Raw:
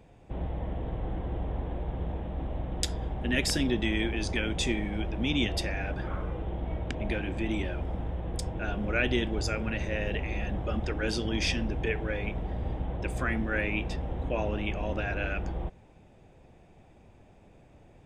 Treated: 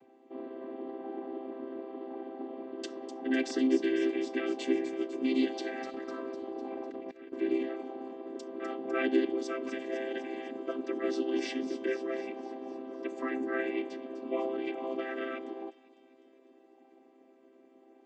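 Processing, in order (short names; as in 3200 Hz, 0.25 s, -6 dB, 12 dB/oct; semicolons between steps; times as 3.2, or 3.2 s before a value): chord vocoder major triad, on C4; 5.83–7.33 negative-ratio compressor -40 dBFS, ratio -0.5; on a send: thin delay 0.251 s, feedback 61%, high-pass 4900 Hz, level -7 dB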